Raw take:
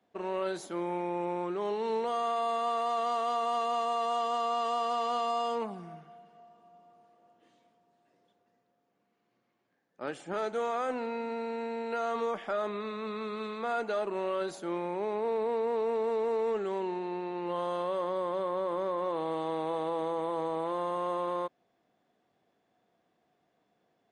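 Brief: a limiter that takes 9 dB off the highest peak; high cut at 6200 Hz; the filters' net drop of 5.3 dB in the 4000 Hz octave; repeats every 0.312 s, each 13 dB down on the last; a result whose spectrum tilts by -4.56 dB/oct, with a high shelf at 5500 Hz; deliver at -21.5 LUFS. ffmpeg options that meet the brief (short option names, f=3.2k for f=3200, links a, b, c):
-af "lowpass=6.2k,equalizer=f=4k:t=o:g=-8.5,highshelf=f=5.5k:g=3.5,alimiter=level_in=7.5dB:limit=-24dB:level=0:latency=1,volume=-7.5dB,aecho=1:1:312|624|936:0.224|0.0493|0.0108,volume=18dB"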